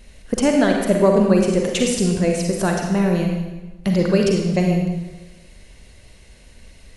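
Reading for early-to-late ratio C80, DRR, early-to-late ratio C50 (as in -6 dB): 4.5 dB, 1.0 dB, 2.5 dB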